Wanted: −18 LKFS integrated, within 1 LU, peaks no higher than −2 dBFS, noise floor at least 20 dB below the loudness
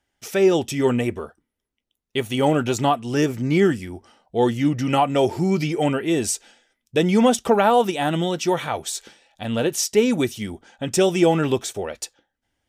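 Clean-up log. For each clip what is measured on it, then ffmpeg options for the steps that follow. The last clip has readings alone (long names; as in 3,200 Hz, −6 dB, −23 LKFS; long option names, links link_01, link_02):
integrated loudness −21.0 LKFS; sample peak −5.5 dBFS; target loudness −18.0 LKFS
→ -af "volume=3dB"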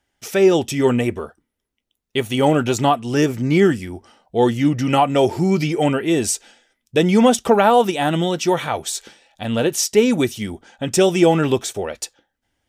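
integrated loudness −18.0 LKFS; sample peak −2.5 dBFS; background noise floor −78 dBFS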